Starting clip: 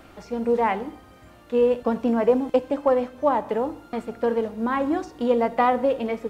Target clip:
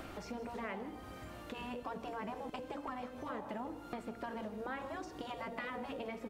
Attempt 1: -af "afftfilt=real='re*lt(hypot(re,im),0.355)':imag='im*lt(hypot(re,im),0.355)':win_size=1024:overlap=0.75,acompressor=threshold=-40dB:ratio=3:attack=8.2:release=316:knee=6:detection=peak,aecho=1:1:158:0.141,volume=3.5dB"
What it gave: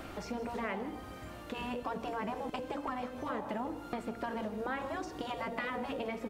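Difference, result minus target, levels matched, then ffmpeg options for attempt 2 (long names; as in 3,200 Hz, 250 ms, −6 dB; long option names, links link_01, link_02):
downward compressor: peak gain reduction −5 dB
-af "afftfilt=real='re*lt(hypot(re,im),0.355)':imag='im*lt(hypot(re,im),0.355)':win_size=1024:overlap=0.75,acompressor=threshold=-47.5dB:ratio=3:attack=8.2:release=316:knee=6:detection=peak,aecho=1:1:158:0.141,volume=3.5dB"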